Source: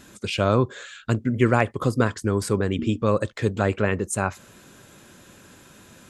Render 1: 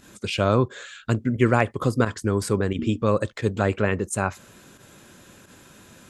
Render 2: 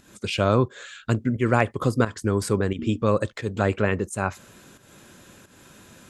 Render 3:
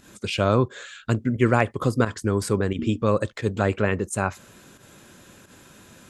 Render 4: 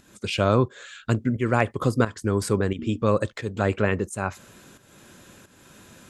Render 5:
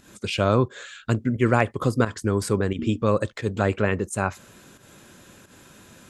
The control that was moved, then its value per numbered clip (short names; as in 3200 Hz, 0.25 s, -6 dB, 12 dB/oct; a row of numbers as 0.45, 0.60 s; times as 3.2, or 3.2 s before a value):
pump, release: 66, 251, 100, 408, 146 ms